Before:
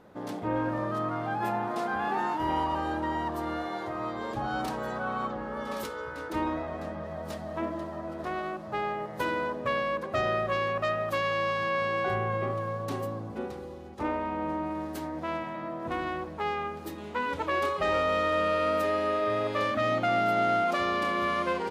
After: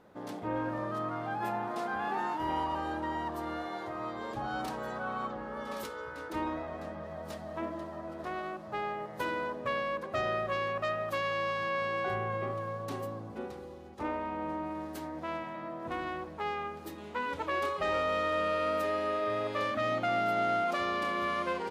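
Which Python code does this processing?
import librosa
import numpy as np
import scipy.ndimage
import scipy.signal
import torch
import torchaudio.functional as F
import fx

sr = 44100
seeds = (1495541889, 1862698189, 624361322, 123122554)

y = fx.low_shelf(x, sr, hz=320.0, db=-2.5)
y = F.gain(torch.from_numpy(y), -3.5).numpy()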